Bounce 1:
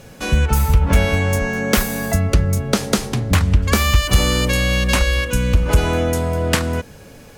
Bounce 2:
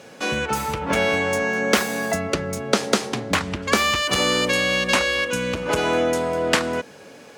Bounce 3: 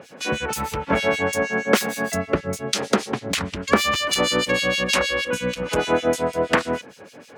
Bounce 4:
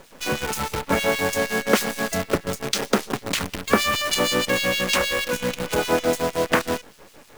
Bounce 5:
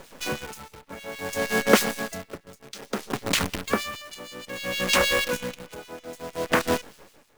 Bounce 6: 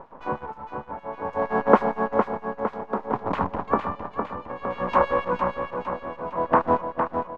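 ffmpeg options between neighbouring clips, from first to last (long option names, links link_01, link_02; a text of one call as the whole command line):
ffmpeg -i in.wav -af "highpass=280,equalizer=frequency=14000:width_type=o:width=0.85:gain=-13.5,volume=1dB" out.wav
ffmpeg -i in.wav -filter_complex "[0:a]acrossover=split=2300[link_01][link_02];[link_01]aeval=exprs='val(0)*(1-1/2+1/2*cos(2*PI*6.4*n/s))':channel_layout=same[link_03];[link_02]aeval=exprs='val(0)*(1-1/2-1/2*cos(2*PI*6.4*n/s))':channel_layout=same[link_04];[link_03][link_04]amix=inputs=2:normalize=0,volume=4dB" out.wav
ffmpeg -i in.wav -af "acrusher=bits=5:dc=4:mix=0:aa=0.000001,volume=-1dB" out.wav
ffmpeg -i in.wav -af "aeval=exprs='val(0)*pow(10,-21*(0.5-0.5*cos(2*PI*0.59*n/s))/20)':channel_layout=same,volume=1.5dB" out.wav
ffmpeg -i in.wav -filter_complex "[0:a]lowpass=frequency=980:width_type=q:width=3.8,asplit=2[link_01][link_02];[link_02]aecho=0:1:458|916|1374|1832|2290|2748|3206:0.501|0.266|0.141|0.0746|0.0395|0.021|0.0111[link_03];[link_01][link_03]amix=inputs=2:normalize=0,volume=-1dB" out.wav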